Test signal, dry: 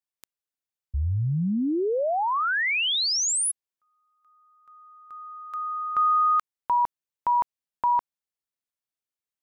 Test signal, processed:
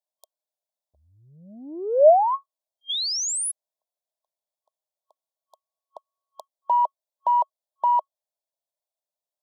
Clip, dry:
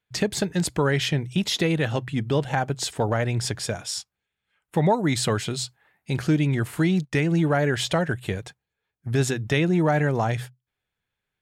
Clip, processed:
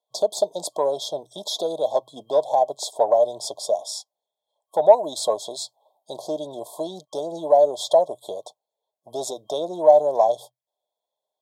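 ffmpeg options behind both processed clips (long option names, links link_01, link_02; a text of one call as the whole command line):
ffmpeg -i in.wav -af "afftfilt=real='re*(1-between(b*sr/4096,1100,3200))':imag='im*(1-between(b*sr/4096,1100,3200))':win_size=4096:overlap=0.75,acontrast=88,aeval=exprs='0.562*(cos(1*acos(clip(val(0)/0.562,-1,1)))-cos(1*PI/2))+0.00316*(cos(4*acos(clip(val(0)/0.562,-1,1)))-cos(4*PI/2))':channel_layout=same,highpass=frequency=620:width_type=q:width=6.8,volume=-9dB" out.wav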